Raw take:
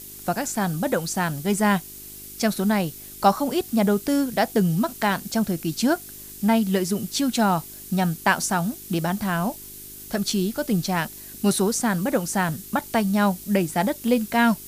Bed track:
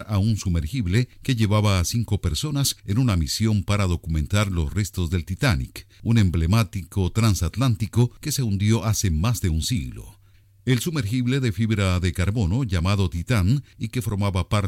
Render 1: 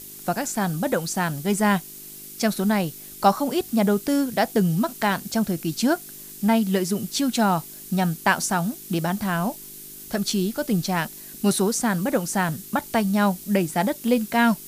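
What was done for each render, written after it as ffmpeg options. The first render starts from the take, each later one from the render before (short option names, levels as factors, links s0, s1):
-af "bandreject=f=50:t=h:w=4,bandreject=f=100:t=h:w=4"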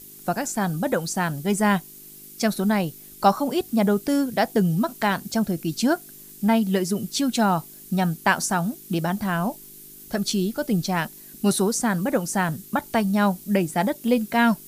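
-af "afftdn=nr=6:nf=-41"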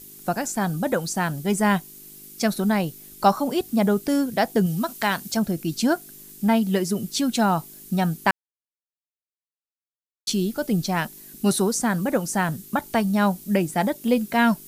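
-filter_complex "[0:a]asettb=1/sr,asplit=3[s0][s1][s2];[s0]atrim=end=4.664[s3];[s1]atrim=start=4.66:end=5.37,asetpts=PTS-STARTPTS,afade=t=in:d=0.004:c=qsin,afade=t=out:st=0.706:d=0.004:c=qsin,tiltshelf=f=1200:g=-3.5[s4];[s2]atrim=start=5.366[s5];[s3][s4]acrossfade=d=0.004:c1=hsin:c2=qsin[s6];[s6][s5]acrossfade=d=0.004:c1=qsin:c2=hsin,asplit=3[s7][s8][s9];[s7]atrim=end=8.31,asetpts=PTS-STARTPTS,afade=t=out:st=8.306:d=0.004:c=hsin[s10];[s8]atrim=start=8.31:end=10.27,asetpts=PTS-STARTPTS,volume=0[s11];[s9]atrim=start=10.27,asetpts=PTS-STARTPTS,afade=t=in:d=0.004:c=hsin[s12];[s10][s11][s12]concat=n=3:v=0:a=1"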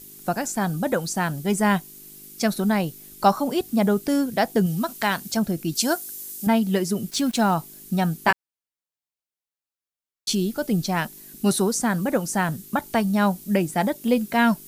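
-filter_complex "[0:a]asettb=1/sr,asplit=3[s0][s1][s2];[s0]atrim=end=5.754[s3];[s1]atrim=start=5.75:end=6.47,asetpts=PTS-STARTPTS,afade=t=in:d=0.004:c=qsin,afade=t=out:st=0.716:d=0.004:c=qsin,bass=f=250:g=-11,treble=f=4000:g=9[s4];[s2]atrim=start=6.466[s5];[s3][s4]acrossfade=d=0.004:c1=hsin:c2=qsin[s6];[s6][s5]acrossfade=d=0.004:c1=qsin:c2=hsin,asplit=3[s7][s8][s9];[s7]afade=t=out:st=7.1:d=0.02[s10];[s8]aeval=exprs='val(0)*gte(abs(val(0)),0.0158)':c=same,afade=t=in:st=7.1:d=0.02,afade=t=out:st=7.53:d=0.02[s11];[s9]afade=t=in:st=7.53:d=0.02[s12];[s10][s11][s12]amix=inputs=3:normalize=0,asettb=1/sr,asplit=3[s13][s14][s15];[s13]atrim=end=8.264[s16];[s14]atrim=start=8.26:end=10.35,asetpts=PTS-STARTPTS,afade=t=in:d=0.004:c=qsin,afade=t=out:st=2.086:d=0.004:c=qsin,asplit=2[s17][s18];[s18]adelay=18,volume=0.631[s19];[s17][s19]amix=inputs=2:normalize=0,atrim=end_sample=92169[s20];[s15]atrim=start=10.346[s21];[s16][s20]acrossfade=d=0.004:c1=hsin:c2=qsin[s22];[s22][s21]acrossfade=d=0.004:c1=qsin:c2=hsin"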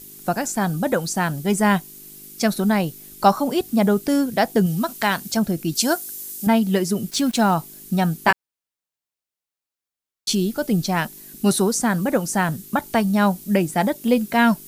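-af "volume=1.33"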